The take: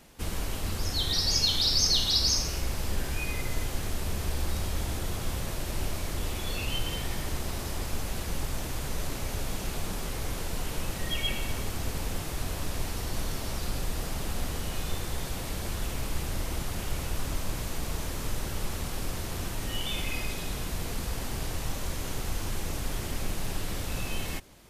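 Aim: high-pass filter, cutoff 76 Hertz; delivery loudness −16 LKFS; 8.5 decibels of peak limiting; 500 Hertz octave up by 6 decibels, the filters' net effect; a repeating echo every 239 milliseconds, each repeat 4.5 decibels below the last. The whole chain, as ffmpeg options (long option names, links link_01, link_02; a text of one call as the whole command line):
ffmpeg -i in.wav -af "highpass=76,equalizer=frequency=500:width_type=o:gain=7.5,alimiter=limit=-19.5dB:level=0:latency=1,aecho=1:1:239|478|717|956|1195|1434|1673|1912|2151:0.596|0.357|0.214|0.129|0.0772|0.0463|0.0278|0.0167|0.01,volume=15dB" out.wav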